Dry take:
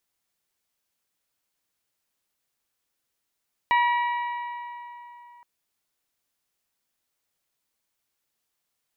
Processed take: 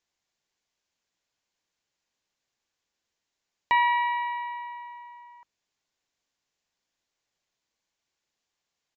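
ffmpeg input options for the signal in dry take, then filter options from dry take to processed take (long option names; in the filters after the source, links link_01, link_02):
-f lavfi -i "aevalsrc='0.133*pow(10,-3*t/3.3)*sin(2*PI*962*t)+0.0668*pow(10,-3*t/2.68)*sin(2*PI*1924*t)+0.0335*pow(10,-3*t/2.538)*sin(2*PI*2308.8*t)+0.0168*pow(10,-3*t/2.373)*sin(2*PI*2886*t)+0.00841*pow(10,-3*t/2.177)*sin(2*PI*3848*t)':duration=1.72:sample_rate=44100"
-af "bandreject=frequency=50:width_type=h:width=6,bandreject=frequency=100:width_type=h:width=6,bandreject=frequency=150:width_type=h:width=6,bandreject=frequency=200:width_type=h:width=6,bandreject=frequency=250:width_type=h:width=6,bandreject=frequency=300:width_type=h:width=6,aresample=16000,aresample=44100,bandreject=frequency=1300:width=12"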